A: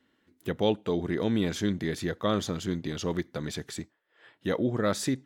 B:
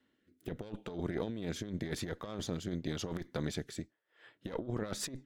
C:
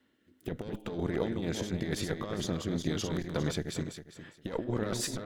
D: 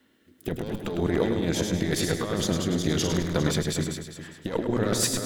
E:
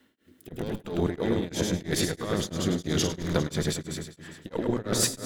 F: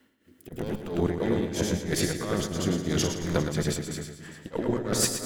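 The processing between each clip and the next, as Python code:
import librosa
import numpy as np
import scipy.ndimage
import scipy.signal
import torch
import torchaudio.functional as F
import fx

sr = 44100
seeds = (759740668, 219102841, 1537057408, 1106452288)

y1 = fx.rotary_switch(x, sr, hz=0.85, then_hz=7.0, switch_at_s=3.99)
y1 = fx.tube_stage(y1, sr, drive_db=22.0, bias=0.7)
y1 = fx.over_compress(y1, sr, threshold_db=-35.0, ratio=-0.5)
y1 = y1 * librosa.db_to_amplitude(-1.5)
y2 = fx.reverse_delay_fb(y1, sr, ms=202, feedback_pct=41, wet_db=-5.5)
y2 = y2 * librosa.db_to_amplitude(4.0)
y3 = fx.high_shelf(y2, sr, hz=6700.0, db=6.0)
y3 = fx.hum_notches(y3, sr, base_hz=60, count=2)
y3 = fx.echo_feedback(y3, sr, ms=104, feedback_pct=38, wet_db=-7)
y3 = y3 * librosa.db_to_amplitude(6.5)
y4 = y3 * np.abs(np.cos(np.pi * 3.0 * np.arange(len(y3)) / sr))
y4 = y4 * librosa.db_to_amplitude(1.0)
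y5 = fx.peak_eq(y4, sr, hz=3700.0, db=-5.5, octaves=0.25)
y5 = fx.echo_feedback(y5, sr, ms=118, feedback_pct=38, wet_db=-9.0)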